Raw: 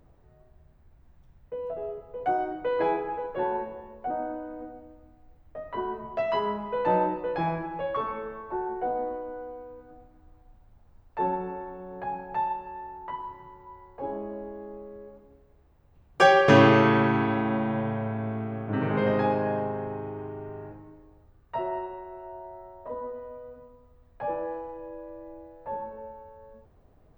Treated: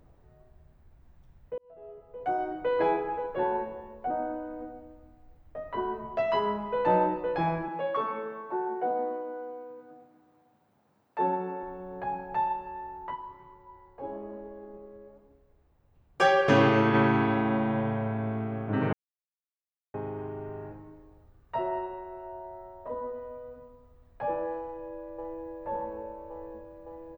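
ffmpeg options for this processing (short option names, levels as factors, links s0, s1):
-filter_complex "[0:a]asettb=1/sr,asplit=3[s0][s1][s2];[s0]atrim=end=7.684[s3];[s1]atrim=start=7.68:end=11.63,asetpts=PTS-STARTPTS,afade=t=in:d=0.004:c=qsin,afade=t=out:st=3.946:d=0.004:c=qsin,highpass=f=160:w=0.5412,highpass=f=160:w=1.3066[s4];[s2]atrim=start=11.626[s5];[s3][s4]acrossfade=d=0.004:c1=hsin:c2=qsin[s6];[s6][s5]acrossfade=d=0.004:c1=qsin:c2=hsin,asplit=3[s7][s8][s9];[s7]afade=t=out:st=13.13:d=0.02[s10];[s8]flanger=delay=1.7:depth=7.6:regen=85:speed=1.1:shape=sinusoidal,afade=t=in:st=13.13:d=0.02,afade=t=out:st=16.93:d=0.02[s11];[s9]afade=t=in:st=16.93:d=0.02[s12];[s10][s11][s12]amix=inputs=3:normalize=0,asplit=2[s13][s14];[s14]afade=t=in:st=24.62:d=0.01,afade=t=out:st=25.46:d=0.01,aecho=0:1:560|1120|1680|2240|2800|3360|3920|4480|5040|5600|6160|6720:0.749894|0.599915|0.479932|0.383946|0.307157|0.245725|0.19658|0.157264|0.125811|0.100649|0.0805193|0.0644154[s15];[s13][s15]amix=inputs=2:normalize=0,asplit=4[s16][s17][s18][s19];[s16]atrim=end=1.58,asetpts=PTS-STARTPTS,afade=t=out:st=1.576:d=0.004:c=hsin[s20];[s17]atrim=start=1.58:end=18.93,asetpts=PTS-STARTPTS,afade=t=in:d=1.07,afade=t=out:st=17.346:d=0.004:c=hsin[s21];[s18]atrim=start=18.93:end=19.94,asetpts=PTS-STARTPTS,volume=0[s22];[s19]atrim=start=19.94,asetpts=PTS-STARTPTS,afade=t=in:d=0.004:c=hsin[s23];[s20][s21][s22][s23]concat=n=4:v=0:a=1"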